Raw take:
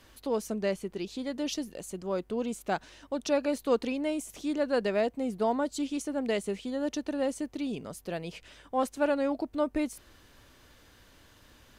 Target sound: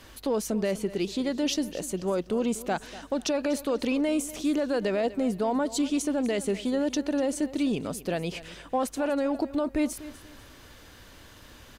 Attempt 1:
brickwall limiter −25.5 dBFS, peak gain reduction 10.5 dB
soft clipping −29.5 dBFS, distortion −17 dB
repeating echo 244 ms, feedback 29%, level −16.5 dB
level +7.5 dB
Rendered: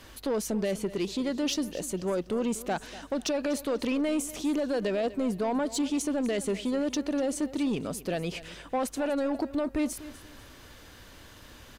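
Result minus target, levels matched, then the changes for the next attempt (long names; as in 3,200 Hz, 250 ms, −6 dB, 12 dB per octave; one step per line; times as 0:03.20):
soft clipping: distortion +13 dB
change: soft clipping −21.5 dBFS, distortion −30 dB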